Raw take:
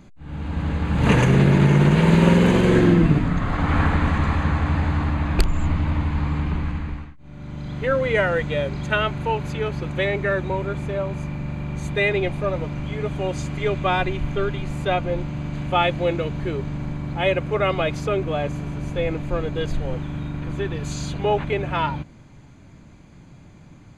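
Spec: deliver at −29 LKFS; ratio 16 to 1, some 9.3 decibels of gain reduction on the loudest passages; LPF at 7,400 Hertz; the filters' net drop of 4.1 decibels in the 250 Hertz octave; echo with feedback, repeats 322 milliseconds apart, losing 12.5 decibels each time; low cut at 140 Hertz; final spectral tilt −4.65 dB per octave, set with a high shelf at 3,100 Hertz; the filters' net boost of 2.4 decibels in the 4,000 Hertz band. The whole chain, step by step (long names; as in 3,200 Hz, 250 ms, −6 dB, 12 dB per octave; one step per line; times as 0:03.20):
high-pass filter 140 Hz
low-pass filter 7,400 Hz
parametric band 250 Hz −5 dB
high-shelf EQ 3,100 Hz −5 dB
parametric band 4,000 Hz +7 dB
downward compressor 16 to 1, threshold −24 dBFS
repeating echo 322 ms, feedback 24%, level −12.5 dB
level +1 dB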